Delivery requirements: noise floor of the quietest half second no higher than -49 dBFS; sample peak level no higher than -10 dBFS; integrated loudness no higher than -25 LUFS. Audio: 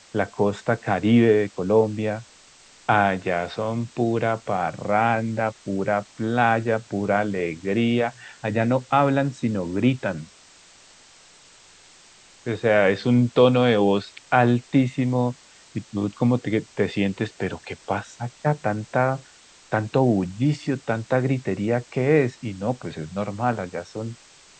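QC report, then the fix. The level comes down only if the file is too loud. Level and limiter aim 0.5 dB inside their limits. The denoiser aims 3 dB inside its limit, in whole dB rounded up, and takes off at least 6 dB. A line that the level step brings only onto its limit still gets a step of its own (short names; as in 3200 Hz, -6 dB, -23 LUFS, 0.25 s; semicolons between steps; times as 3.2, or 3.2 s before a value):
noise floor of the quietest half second -51 dBFS: OK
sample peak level -5.5 dBFS: fail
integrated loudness -23.0 LUFS: fail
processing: gain -2.5 dB; limiter -10.5 dBFS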